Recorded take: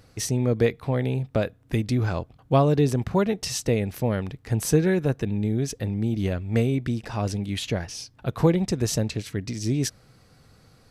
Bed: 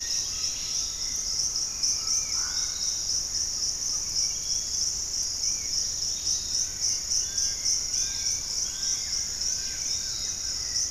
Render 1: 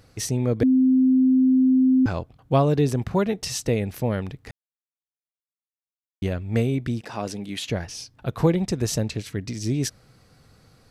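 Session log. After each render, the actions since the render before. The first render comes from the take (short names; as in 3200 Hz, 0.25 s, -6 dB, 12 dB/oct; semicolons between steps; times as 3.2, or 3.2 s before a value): 0.63–2.06 bleep 259 Hz -14 dBFS; 4.51–6.22 mute; 7.01–7.69 HPF 200 Hz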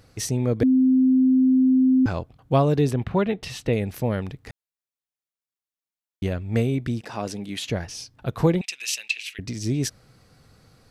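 2.91–3.73 resonant high shelf 4400 Hz -9.5 dB, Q 1.5; 8.61–9.39 resonant high-pass 2600 Hz, resonance Q 6.2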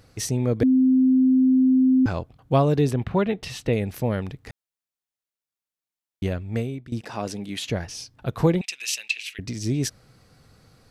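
6.31–6.92 fade out, to -18 dB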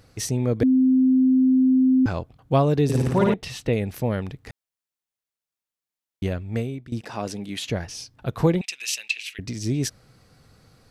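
2.84–3.34 flutter echo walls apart 9.5 m, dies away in 1.3 s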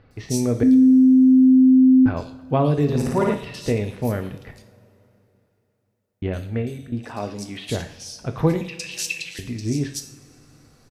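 bands offset in time lows, highs 0.11 s, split 3300 Hz; two-slope reverb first 0.5 s, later 3.2 s, from -20 dB, DRR 6 dB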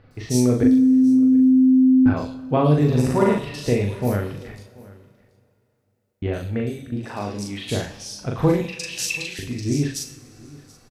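doubler 40 ms -2.5 dB; echo 0.73 s -22.5 dB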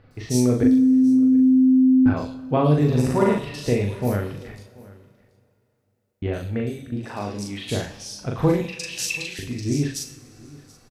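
gain -1 dB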